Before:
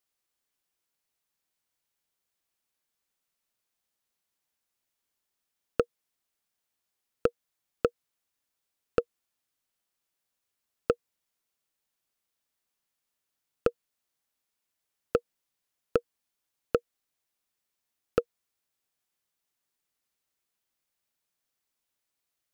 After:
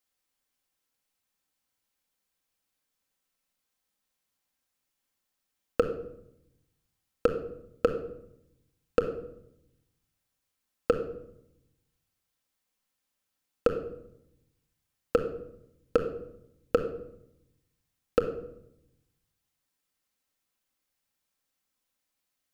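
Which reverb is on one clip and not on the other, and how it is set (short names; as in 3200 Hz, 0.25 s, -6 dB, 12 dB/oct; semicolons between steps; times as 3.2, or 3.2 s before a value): shoebox room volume 2200 m³, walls furnished, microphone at 2.1 m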